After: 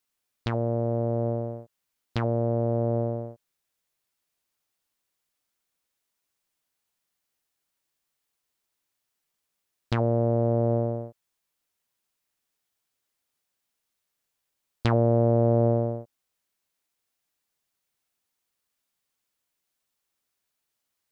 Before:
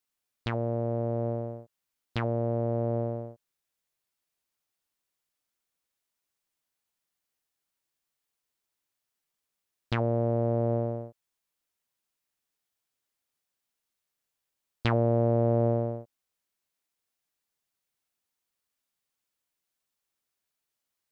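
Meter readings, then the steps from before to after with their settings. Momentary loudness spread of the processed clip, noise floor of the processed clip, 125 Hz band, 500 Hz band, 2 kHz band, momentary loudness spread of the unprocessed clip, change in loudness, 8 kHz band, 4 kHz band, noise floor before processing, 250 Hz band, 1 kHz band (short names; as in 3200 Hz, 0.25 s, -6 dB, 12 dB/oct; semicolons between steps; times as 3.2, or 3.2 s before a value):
14 LU, -82 dBFS, +3.5 dB, +3.0 dB, -1.0 dB, 14 LU, +3.0 dB, n/a, +0.5 dB, -85 dBFS, +3.5 dB, +2.5 dB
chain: dynamic EQ 2500 Hz, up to -7 dB, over -51 dBFS, Q 0.89; gain +3.5 dB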